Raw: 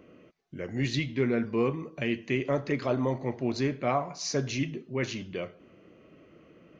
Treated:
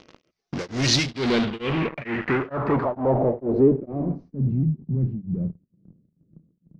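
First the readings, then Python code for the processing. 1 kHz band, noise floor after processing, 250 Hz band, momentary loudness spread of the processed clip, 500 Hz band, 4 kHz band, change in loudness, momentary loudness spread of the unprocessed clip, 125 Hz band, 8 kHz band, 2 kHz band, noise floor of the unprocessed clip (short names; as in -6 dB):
+5.0 dB, -74 dBFS, +6.5 dB, 9 LU, +6.0 dB, +10.0 dB, +6.5 dB, 9 LU, +8.5 dB, n/a, +4.5 dB, -57 dBFS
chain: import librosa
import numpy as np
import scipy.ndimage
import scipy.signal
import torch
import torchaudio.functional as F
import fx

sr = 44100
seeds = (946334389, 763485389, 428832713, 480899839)

p1 = fx.hum_notches(x, sr, base_hz=50, count=3)
p2 = fx.fuzz(p1, sr, gain_db=45.0, gate_db=-48.0)
p3 = p1 + (p2 * librosa.db_to_amplitude(-6.0))
p4 = fx.filter_sweep_lowpass(p3, sr, from_hz=5500.0, to_hz=170.0, start_s=1.02, end_s=4.61, q=3.1)
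p5 = p4 * np.abs(np.cos(np.pi * 2.2 * np.arange(len(p4)) / sr))
y = p5 * librosa.db_to_amplitude(-3.0)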